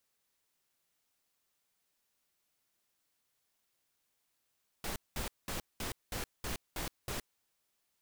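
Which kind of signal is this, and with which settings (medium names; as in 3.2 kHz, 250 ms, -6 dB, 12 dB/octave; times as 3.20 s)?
noise bursts pink, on 0.12 s, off 0.20 s, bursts 8, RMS -38 dBFS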